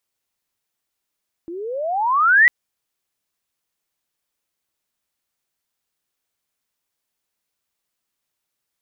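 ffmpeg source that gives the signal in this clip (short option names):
-f lavfi -i "aevalsrc='pow(10,(-7.5+21*(t/1-1))/20)*sin(2*PI*324*1/(31.5*log(2)/12)*(exp(31.5*log(2)/12*t/1)-1))':d=1:s=44100"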